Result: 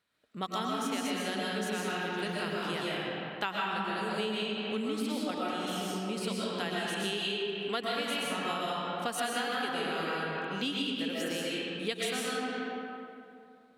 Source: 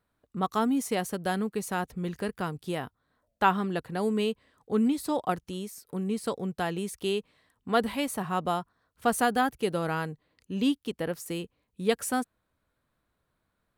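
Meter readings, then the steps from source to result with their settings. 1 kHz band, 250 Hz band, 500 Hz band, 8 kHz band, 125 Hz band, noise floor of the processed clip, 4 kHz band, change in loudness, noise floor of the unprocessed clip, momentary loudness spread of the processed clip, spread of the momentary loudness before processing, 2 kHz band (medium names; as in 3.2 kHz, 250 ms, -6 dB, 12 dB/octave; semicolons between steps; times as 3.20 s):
-4.5 dB, -5.5 dB, -3.5 dB, -2.5 dB, -6.0 dB, -53 dBFS, +6.0 dB, -3.0 dB, -79 dBFS, 3 LU, 11 LU, +1.0 dB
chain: frequency weighting D; algorithmic reverb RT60 2.5 s, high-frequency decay 0.55×, pre-delay 85 ms, DRR -6 dB; compression, threshold -25 dBFS, peak gain reduction 11.5 dB; trim -5 dB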